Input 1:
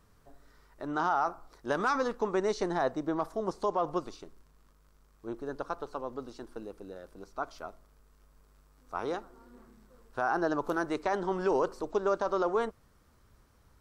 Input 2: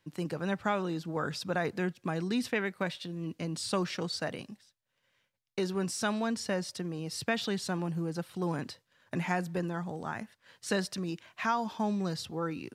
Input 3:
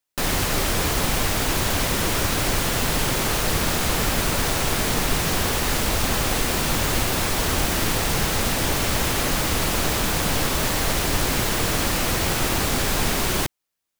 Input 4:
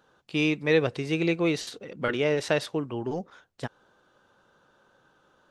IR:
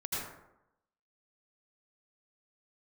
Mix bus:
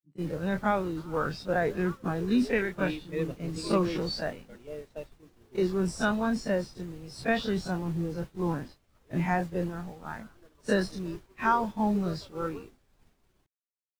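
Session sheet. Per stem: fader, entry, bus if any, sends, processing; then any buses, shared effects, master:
−11.0 dB, 0.00 s, no send, phaser with its sweep stopped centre 750 Hz, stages 6
−1.0 dB, 0.00 s, no send, every bin's largest magnitude spread in time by 60 ms
−18.0 dB, 0.00 s, no send, no processing
−10.5 dB, 2.45 s, no send, auto-filter notch saw down 3.6 Hz 500–2,200 Hz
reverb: not used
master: downward expander −29 dBFS; every bin expanded away from the loudest bin 1.5 to 1

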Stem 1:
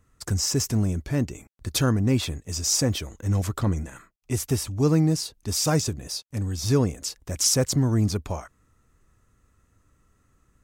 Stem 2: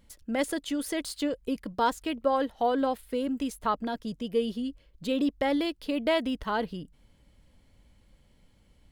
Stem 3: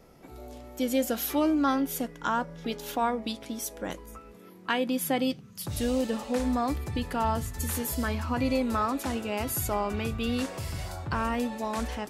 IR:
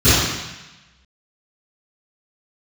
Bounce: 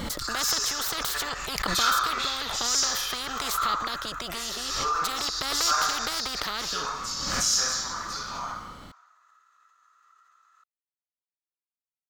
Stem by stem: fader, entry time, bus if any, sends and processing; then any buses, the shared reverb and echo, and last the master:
−6.5 dB, 0.00 s, send −14 dB, high-pass filter 980 Hz 24 dB per octave; high-shelf EQ 3,400 Hz −7 dB
+2.0 dB, 0.00 s, no send, every bin compressed towards the loudest bin 10 to 1
muted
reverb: on, RT60 1.0 s, pre-delay 3 ms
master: thirty-one-band graphic EQ 800 Hz +3 dB, 1,250 Hz +10 dB, 2,500 Hz −5 dB, 4,000 Hz +4 dB, 10,000 Hz −8 dB; background raised ahead of every attack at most 31 dB per second

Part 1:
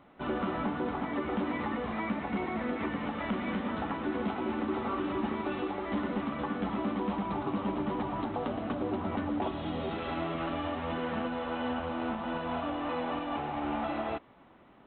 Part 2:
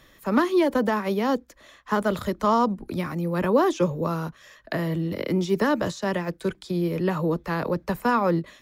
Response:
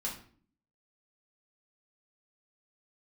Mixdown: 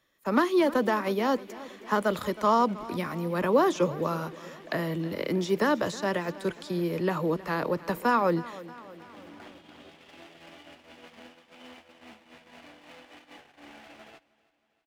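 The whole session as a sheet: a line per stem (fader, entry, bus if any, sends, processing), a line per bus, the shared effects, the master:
−15.5 dB, 0.00 s, no send, echo send −7 dB, lower of the sound and its delayed copy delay 0.35 ms; high-shelf EQ 2,100 Hz +11.5 dB; pitch vibrato 0.71 Hz 27 cents; automatic ducking −18 dB, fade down 0.25 s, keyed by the second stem
−1.0 dB, 0.00 s, no send, echo send −18 dB, no processing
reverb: not used
echo: repeating echo 317 ms, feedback 56%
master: noise gate −47 dBFS, range −15 dB; low-shelf EQ 140 Hz −12 dB

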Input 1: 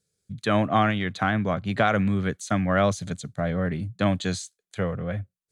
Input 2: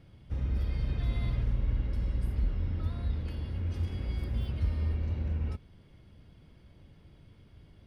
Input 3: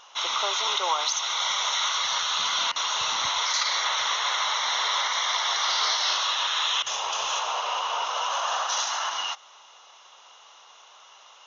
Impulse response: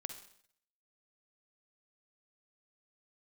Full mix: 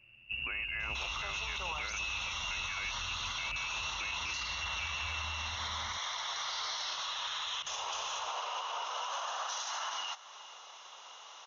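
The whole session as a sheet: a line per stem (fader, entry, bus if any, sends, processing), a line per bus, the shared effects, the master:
−5.5 dB, 0.00 s, bus A, no send, no echo send, no processing
−3.5 dB, 0.00 s, bus A, send −9 dB, echo send −8.5 dB, floating-point word with a short mantissa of 4 bits; barber-pole flanger 5.8 ms +0.34 Hz
0.0 dB, 0.80 s, no bus, no send, echo send −20.5 dB, downward compressor 2 to 1, threshold −40 dBFS, peak gain reduction 11 dB
bus A: 0.0 dB, voice inversion scrambler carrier 2,800 Hz; downward compressor 2 to 1, threshold −33 dBFS, peak gain reduction 7 dB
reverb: on, RT60 0.65 s, pre-delay 44 ms
echo: single-tap delay 409 ms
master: brickwall limiter −28.5 dBFS, peak gain reduction 10.5 dB

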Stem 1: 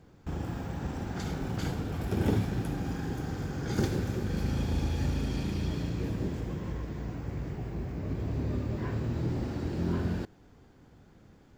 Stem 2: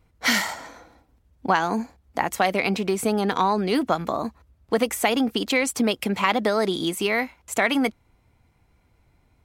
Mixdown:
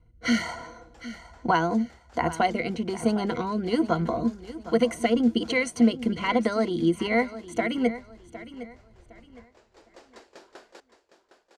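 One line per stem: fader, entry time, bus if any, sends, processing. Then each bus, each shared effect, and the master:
+1.0 dB, 0.55 s, no send, echo send −11 dB, high-pass filter 480 Hz 24 dB per octave; high-shelf EQ 5,200 Hz +8.5 dB; tremolo with a ramp in dB decaying 5.1 Hz, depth 32 dB; automatic ducking −13 dB, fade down 1.90 s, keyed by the second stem
−3.5 dB, 0.00 s, no send, echo send −15 dB, EQ curve with evenly spaced ripples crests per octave 1.9, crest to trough 14 dB; rotating-speaker cabinet horn 1.2 Hz; spectral tilt −2 dB per octave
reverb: not used
echo: repeating echo 760 ms, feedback 29%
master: low-pass filter 10,000 Hz 24 dB per octave

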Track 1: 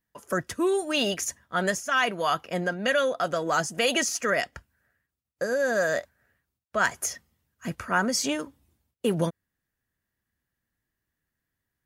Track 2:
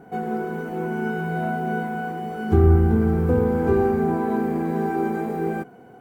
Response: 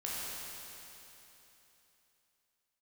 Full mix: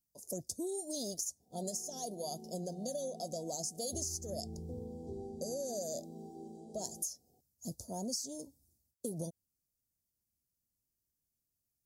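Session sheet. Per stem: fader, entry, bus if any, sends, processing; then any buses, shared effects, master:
+2.0 dB, 0.00 s, no send, no processing
−12.5 dB, 1.40 s, no send, low-pass filter 8,700 Hz 24 dB per octave; parametric band 3,200 Hz +14.5 dB 0.46 octaves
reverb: not used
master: inverse Chebyshev band-stop filter 1,100–2,800 Hz, stop band 50 dB; low shelf with overshoot 710 Hz −10.5 dB, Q 1.5; downward compressor 16 to 1, threshold −35 dBFS, peak gain reduction 13.5 dB

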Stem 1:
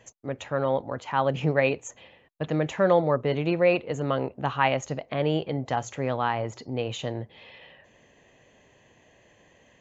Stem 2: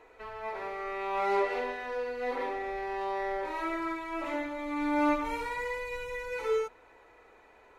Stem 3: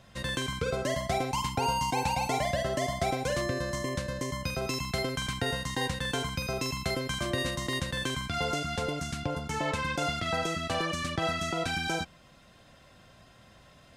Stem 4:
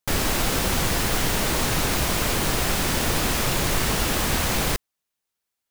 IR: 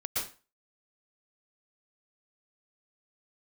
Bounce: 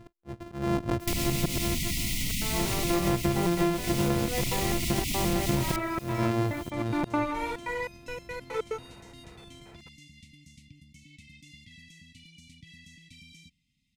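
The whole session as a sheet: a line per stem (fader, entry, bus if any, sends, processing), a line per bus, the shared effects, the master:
+2.0 dB, 0.00 s, no bus, no send, samples sorted by size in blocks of 128 samples; spectral tilt −3 dB per octave; volume swells 404 ms
+2.0 dB, 2.10 s, no bus, no send, gate pattern ".x.xxxx.xx..x.x" 143 BPM −60 dB
−17.5 dB, 1.45 s, bus A, no send, no processing
−0.5 dB, 1.00 s, bus A, no send, envelope flattener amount 50%
bus A: 0.0 dB, linear-phase brick-wall band-stop 300–1,900 Hz; downward compressor, threshold −26 dBFS, peak gain reduction 8 dB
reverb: not used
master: downward compressor 10 to 1, threshold −22 dBFS, peak gain reduction 12.5 dB

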